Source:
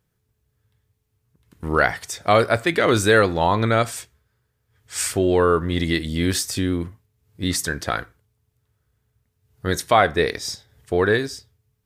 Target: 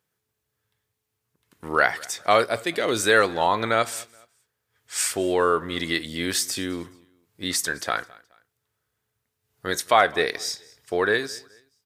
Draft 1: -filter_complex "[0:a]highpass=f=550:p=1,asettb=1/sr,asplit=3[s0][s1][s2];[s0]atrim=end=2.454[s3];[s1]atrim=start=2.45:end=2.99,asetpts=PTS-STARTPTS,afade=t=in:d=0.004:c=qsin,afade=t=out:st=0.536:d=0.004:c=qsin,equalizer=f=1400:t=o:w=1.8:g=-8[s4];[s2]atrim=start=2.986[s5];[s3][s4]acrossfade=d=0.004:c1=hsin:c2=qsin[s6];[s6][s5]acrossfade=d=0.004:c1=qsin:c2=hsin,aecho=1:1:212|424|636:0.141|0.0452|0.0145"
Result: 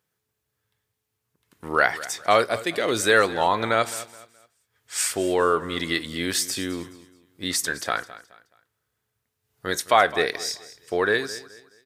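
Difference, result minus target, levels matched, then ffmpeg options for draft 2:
echo-to-direct +6.5 dB
-filter_complex "[0:a]highpass=f=550:p=1,asettb=1/sr,asplit=3[s0][s1][s2];[s0]atrim=end=2.454[s3];[s1]atrim=start=2.45:end=2.99,asetpts=PTS-STARTPTS,afade=t=in:d=0.004:c=qsin,afade=t=out:st=0.536:d=0.004:c=qsin,equalizer=f=1400:t=o:w=1.8:g=-8[s4];[s2]atrim=start=2.986[s5];[s3][s4]acrossfade=d=0.004:c1=hsin:c2=qsin[s6];[s6][s5]acrossfade=d=0.004:c1=qsin:c2=hsin,aecho=1:1:212|424:0.0668|0.0214"

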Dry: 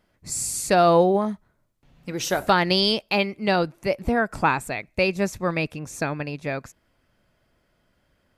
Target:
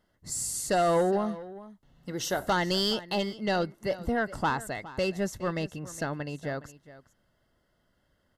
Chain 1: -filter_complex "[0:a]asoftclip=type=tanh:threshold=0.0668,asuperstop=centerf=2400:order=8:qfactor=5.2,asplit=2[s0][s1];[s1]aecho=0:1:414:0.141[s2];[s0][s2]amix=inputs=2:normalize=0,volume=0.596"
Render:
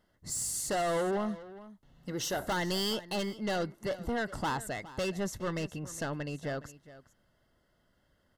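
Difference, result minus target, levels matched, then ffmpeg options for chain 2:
saturation: distortion +8 dB
-filter_complex "[0:a]asoftclip=type=tanh:threshold=0.2,asuperstop=centerf=2400:order=8:qfactor=5.2,asplit=2[s0][s1];[s1]aecho=0:1:414:0.141[s2];[s0][s2]amix=inputs=2:normalize=0,volume=0.596"

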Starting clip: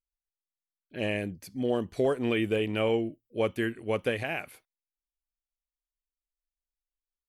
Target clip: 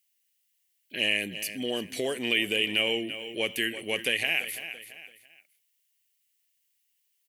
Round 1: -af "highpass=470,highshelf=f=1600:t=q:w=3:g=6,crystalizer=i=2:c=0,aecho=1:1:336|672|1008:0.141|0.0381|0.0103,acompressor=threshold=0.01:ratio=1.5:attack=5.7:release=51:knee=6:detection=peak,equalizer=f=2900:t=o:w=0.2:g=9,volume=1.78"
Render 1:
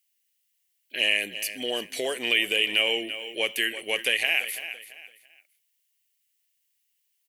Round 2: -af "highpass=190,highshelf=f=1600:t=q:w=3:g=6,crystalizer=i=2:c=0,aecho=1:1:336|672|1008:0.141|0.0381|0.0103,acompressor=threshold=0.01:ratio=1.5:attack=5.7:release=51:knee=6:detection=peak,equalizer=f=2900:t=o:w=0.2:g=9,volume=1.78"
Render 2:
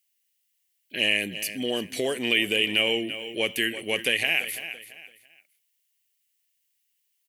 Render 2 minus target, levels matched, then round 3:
compression: peak gain reduction -3 dB
-af "highpass=190,highshelf=f=1600:t=q:w=3:g=6,crystalizer=i=2:c=0,aecho=1:1:336|672|1008:0.141|0.0381|0.0103,acompressor=threshold=0.00355:ratio=1.5:attack=5.7:release=51:knee=6:detection=peak,equalizer=f=2900:t=o:w=0.2:g=9,volume=1.78"

